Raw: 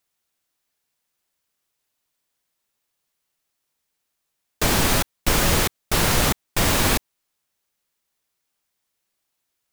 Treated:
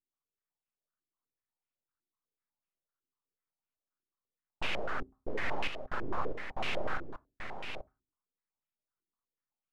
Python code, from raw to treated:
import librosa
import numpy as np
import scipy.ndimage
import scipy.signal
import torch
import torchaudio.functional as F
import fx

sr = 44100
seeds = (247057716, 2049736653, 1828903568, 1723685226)

y = fx.wiener(x, sr, points=25)
y = fx.low_shelf(y, sr, hz=230.0, db=-11.0)
y = 10.0 ** (-17.0 / 20.0) * np.tanh(y / 10.0 ** (-17.0 / 20.0))
y = fx.fixed_phaser(y, sr, hz=550.0, stages=4)
y = np.abs(y)
y = y + 10.0 ** (-7.0 / 20.0) * np.pad(y, (int(835 * sr / 1000.0), 0))[:len(y)]
y = fx.rev_fdn(y, sr, rt60_s=0.31, lf_ratio=1.45, hf_ratio=0.55, size_ms=23.0, drr_db=17.0)
y = fx.filter_held_lowpass(y, sr, hz=8.0, low_hz=350.0, high_hz=2600.0)
y = y * librosa.db_to_amplitude(-4.0)